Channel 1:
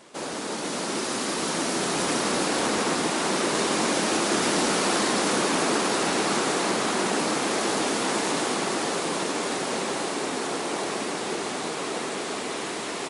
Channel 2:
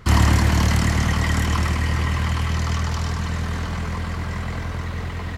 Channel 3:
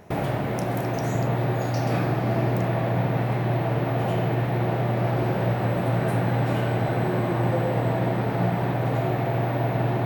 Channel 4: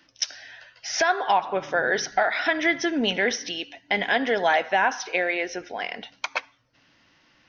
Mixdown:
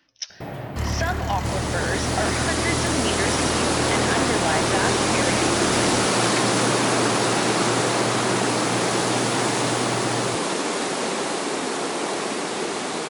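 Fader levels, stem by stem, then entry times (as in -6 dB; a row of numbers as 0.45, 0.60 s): +3.0, -10.5, -7.0, -5.0 dB; 1.30, 0.70, 0.30, 0.00 s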